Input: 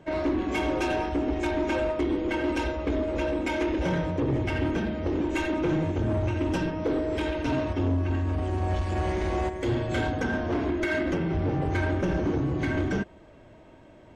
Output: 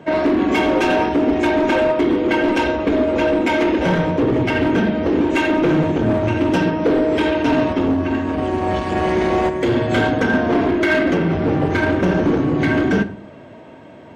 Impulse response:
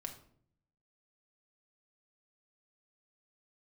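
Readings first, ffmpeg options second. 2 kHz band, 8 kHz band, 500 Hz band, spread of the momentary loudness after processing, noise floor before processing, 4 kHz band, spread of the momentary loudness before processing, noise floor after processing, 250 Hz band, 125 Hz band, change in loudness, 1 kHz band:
+11.5 dB, can't be measured, +11.0 dB, 3 LU, −51 dBFS, +10.5 dB, 2 LU, −40 dBFS, +11.0 dB, +5.0 dB, +10.0 dB, +11.5 dB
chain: -filter_complex "[0:a]highpass=130,asoftclip=type=hard:threshold=-23dB,asplit=2[link_01][link_02];[1:a]atrim=start_sample=2205,lowpass=5000[link_03];[link_02][link_03]afir=irnorm=-1:irlink=0,volume=1.5dB[link_04];[link_01][link_04]amix=inputs=2:normalize=0,volume=7dB"

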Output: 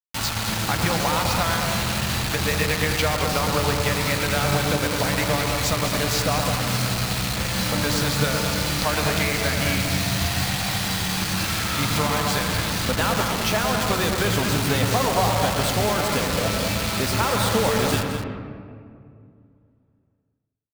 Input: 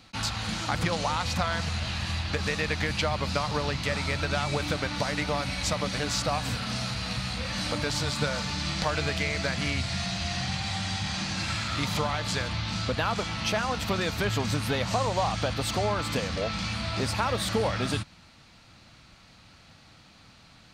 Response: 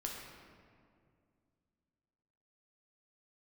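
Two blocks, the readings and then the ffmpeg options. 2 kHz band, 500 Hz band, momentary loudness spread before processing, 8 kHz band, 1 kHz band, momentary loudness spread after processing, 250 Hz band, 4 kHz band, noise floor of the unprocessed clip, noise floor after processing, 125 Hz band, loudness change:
+6.0 dB, +6.5 dB, 3 LU, +10.0 dB, +6.5 dB, 3 LU, +7.0 dB, +6.0 dB, −55 dBFS, −62 dBFS, +6.0 dB, +6.5 dB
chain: -filter_complex "[0:a]acrusher=bits=4:mix=0:aa=0.000001,asplit=2[link_01][link_02];[link_02]adelay=209.9,volume=-7dB,highshelf=frequency=4000:gain=-4.72[link_03];[link_01][link_03]amix=inputs=2:normalize=0,asplit=2[link_04][link_05];[1:a]atrim=start_sample=2205,lowpass=2200,adelay=115[link_06];[link_05][link_06]afir=irnorm=-1:irlink=0,volume=-3.5dB[link_07];[link_04][link_07]amix=inputs=2:normalize=0,volume=3.5dB"

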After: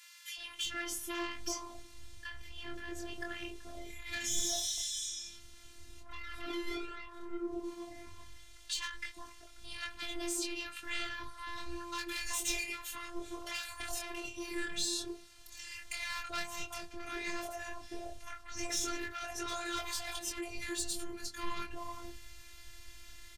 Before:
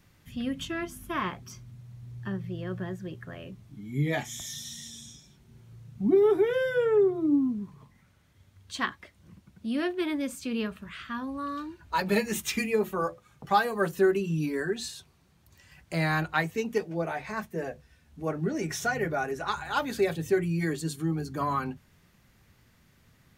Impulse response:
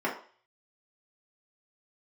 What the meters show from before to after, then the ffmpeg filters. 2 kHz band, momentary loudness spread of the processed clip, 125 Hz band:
−7.0 dB, 18 LU, −22.5 dB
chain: -filter_complex "[0:a]lowpass=10000,asplit=2[link_01][link_02];[link_02]aeval=exprs='0.316*sin(PI/2*3.55*val(0)/0.316)':channel_layout=same,volume=-4dB[link_03];[link_01][link_03]amix=inputs=2:normalize=0,alimiter=limit=-17.5dB:level=0:latency=1:release=47,asoftclip=type=tanh:threshold=-20dB,flanger=delay=20:depth=5.5:speed=0.1,tiltshelf=frequency=1500:gain=-8,acompressor=threshold=-37dB:ratio=2,asplit=2[link_04][link_05];[1:a]atrim=start_sample=2205[link_06];[link_05][link_06]afir=irnorm=-1:irlink=0,volume=-21.5dB[link_07];[link_04][link_07]amix=inputs=2:normalize=0,asubboost=boost=11:cutoff=71,afftfilt=real='hypot(re,im)*cos(PI*b)':imag='0':win_size=512:overlap=0.75,acrossover=split=960[link_08][link_09];[link_08]adelay=380[link_10];[link_10][link_09]amix=inputs=2:normalize=0,volume=1dB"

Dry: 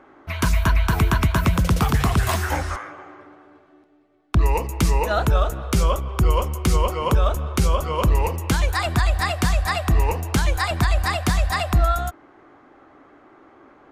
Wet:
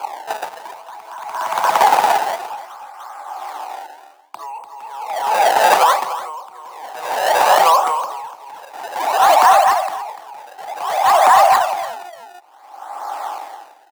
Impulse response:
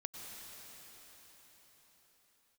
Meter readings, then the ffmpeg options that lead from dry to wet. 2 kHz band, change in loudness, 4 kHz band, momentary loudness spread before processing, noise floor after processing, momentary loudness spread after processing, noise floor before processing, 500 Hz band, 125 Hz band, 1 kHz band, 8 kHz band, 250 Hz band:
+4.0 dB, +6.5 dB, +4.0 dB, 3 LU, −44 dBFS, 22 LU, −53 dBFS, +6.5 dB, below −30 dB, +13.0 dB, +3.5 dB, −15.0 dB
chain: -filter_complex "[0:a]lowpass=1200,aemphasis=mode=production:type=riaa,asplit=2[link_01][link_02];[link_02]acompressor=threshold=-27dB:ratio=6,volume=0.5dB[link_03];[link_01][link_03]amix=inputs=2:normalize=0,acrusher=samples=23:mix=1:aa=0.000001:lfo=1:lforange=36.8:lforate=0.6,highpass=frequency=830:width_type=q:width=6.6,asoftclip=type=tanh:threshold=-7.5dB,asplit=2[link_04][link_05];[link_05]aecho=0:1:294:0.668[link_06];[link_04][link_06]amix=inputs=2:normalize=0,alimiter=level_in=14dB:limit=-1dB:release=50:level=0:latency=1,aeval=exprs='val(0)*pow(10,-26*(0.5-0.5*cos(2*PI*0.53*n/s))/20)':channel_layout=same,volume=-1dB"

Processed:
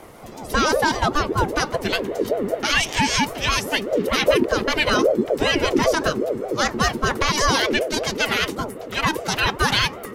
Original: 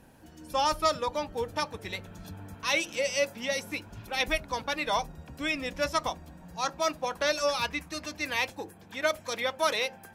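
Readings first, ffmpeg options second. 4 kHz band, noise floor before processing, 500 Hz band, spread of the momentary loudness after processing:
+10.5 dB, −52 dBFS, +10.0 dB, 6 LU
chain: -filter_complex "[0:a]asubboost=boost=9:cutoff=91,acrossover=split=330[link_01][link_02];[link_01]volume=22.5dB,asoftclip=hard,volume=-22.5dB[link_03];[link_03][link_02]amix=inputs=2:normalize=0,alimiter=level_in=21.5dB:limit=-1dB:release=50:level=0:latency=1,aeval=exprs='val(0)*sin(2*PI*440*n/s+440*0.35/5.1*sin(2*PI*5.1*n/s))':channel_layout=same,volume=-5.5dB"

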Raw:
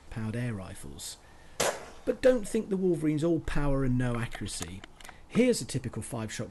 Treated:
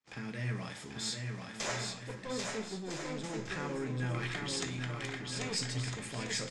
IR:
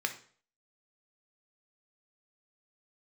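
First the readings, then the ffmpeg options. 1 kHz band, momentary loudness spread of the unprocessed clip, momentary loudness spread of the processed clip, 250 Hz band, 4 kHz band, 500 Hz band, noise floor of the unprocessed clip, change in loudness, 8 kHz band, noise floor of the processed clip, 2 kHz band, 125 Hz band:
−3.0 dB, 15 LU, 5 LU, −10.0 dB, +2.5 dB, −12.0 dB, −53 dBFS, −7.0 dB, −1.5 dB, −47 dBFS, −0.5 dB, −4.5 dB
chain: -filter_complex "[0:a]aeval=exprs='sgn(val(0))*max(abs(val(0))-0.00133,0)':channel_layout=same,highpass=frequency=46:width=0.5412,highpass=frequency=46:width=1.3066,aeval=exprs='clip(val(0),-1,0.0355)':channel_layout=same,asubboost=boost=4.5:cutoff=77,areverse,acompressor=threshold=-35dB:ratio=6,areverse,lowpass=frequency=7200:width=0.5412,lowpass=frequency=7200:width=1.3066,agate=range=-31dB:threshold=-59dB:ratio=16:detection=peak,highshelf=frequency=4700:gain=10,aecho=1:1:790|1304|1637|1854|1995:0.631|0.398|0.251|0.158|0.1[link_01];[1:a]atrim=start_sample=2205[link_02];[link_01][link_02]afir=irnorm=-1:irlink=0,volume=-1.5dB"

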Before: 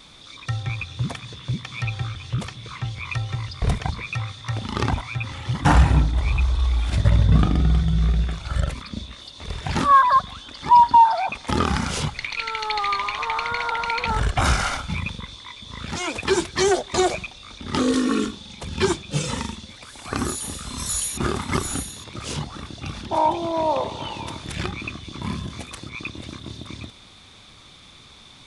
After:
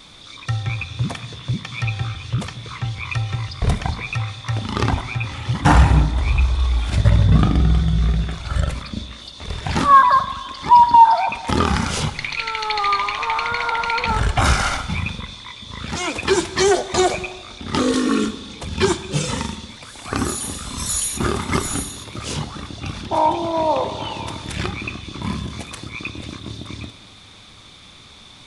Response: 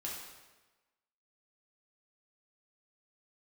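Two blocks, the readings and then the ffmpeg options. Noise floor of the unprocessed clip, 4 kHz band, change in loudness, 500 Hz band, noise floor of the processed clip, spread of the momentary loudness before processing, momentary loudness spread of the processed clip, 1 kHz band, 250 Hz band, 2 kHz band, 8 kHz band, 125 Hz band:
−47 dBFS, +3.5 dB, +3.0 dB, +3.0 dB, −44 dBFS, 17 LU, 17 LU, +3.5 dB, +3.0 dB, +3.5 dB, +3.5 dB, +3.0 dB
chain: -filter_complex "[0:a]asplit=2[link_01][link_02];[1:a]atrim=start_sample=2205,asetrate=33516,aresample=44100,adelay=10[link_03];[link_02][link_03]afir=irnorm=-1:irlink=0,volume=-13.5dB[link_04];[link_01][link_04]amix=inputs=2:normalize=0,volume=3dB"

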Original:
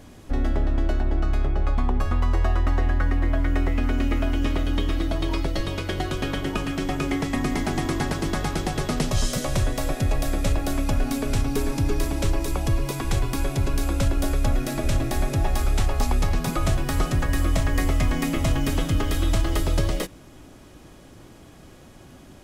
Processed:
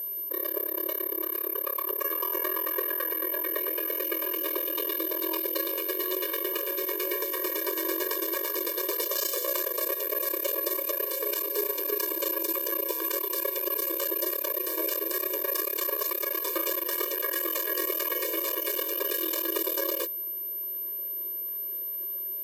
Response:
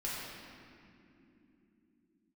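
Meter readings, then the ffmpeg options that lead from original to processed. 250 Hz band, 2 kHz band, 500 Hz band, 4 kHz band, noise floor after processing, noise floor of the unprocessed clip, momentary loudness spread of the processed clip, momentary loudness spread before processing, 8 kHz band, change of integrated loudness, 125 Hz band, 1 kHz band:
−11.5 dB, −4.0 dB, −1.0 dB, −2.5 dB, −34 dBFS, −47 dBFS, 3 LU, 3 LU, −0.5 dB, −2.0 dB, below −40 dB, −6.5 dB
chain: -filter_complex "[0:a]acrossover=split=330|7500[link_01][link_02][link_03];[link_01]alimiter=limit=-23dB:level=0:latency=1:release=102[link_04];[link_04][link_02][link_03]amix=inputs=3:normalize=0,aeval=exprs='val(0)+0.0316*sin(2*PI*13000*n/s)':channel_layout=same,aeval=exprs='0.266*(cos(1*acos(clip(val(0)/0.266,-1,1)))-cos(1*PI/2))+0.0237*(cos(2*acos(clip(val(0)/0.266,-1,1)))-cos(2*PI/2))+0.0596*(cos(6*acos(clip(val(0)/0.266,-1,1)))-cos(6*PI/2))+0.00335*(cos(7*acos(clip(val(0)/0.266,-1,1)))-cos(7*PI/2))':channel_layout=same,equalizer=frequency=1600:width_type=o:width=1.8:gain=-4,afftfilt=real='re*eq(mod(floor(b*sr/1024/310),2),1)':imag='im*eq(mod(floor(b*sr/1024/310),2),1)':win_size=1024:overlap=0.75"

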